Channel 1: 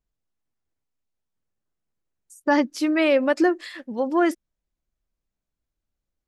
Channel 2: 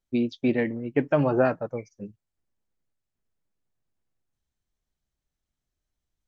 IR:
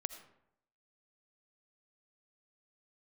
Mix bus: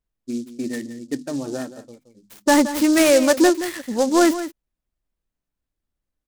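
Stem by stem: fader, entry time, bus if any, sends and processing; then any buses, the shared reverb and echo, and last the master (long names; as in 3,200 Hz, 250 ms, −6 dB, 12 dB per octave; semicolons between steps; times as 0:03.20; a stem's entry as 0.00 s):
+2.0 dB, 0.00 s, no send, echo send −12.5 dB, leveller curve on the samples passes 1
−11.5 dB, 0.15 s, no send, echo send −14.5 dB, mains-hum notches 50/100/150/200/250 Hz; hollow resonant body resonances 270/1,800 Hz, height 12 dB, ringing for 25 ms; automatic ducking −9 dB, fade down 0.70 s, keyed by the first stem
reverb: not used
echo: single-tap delay 173 ms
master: short delay modulated by noise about 5,700 Hz, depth 0.053 ms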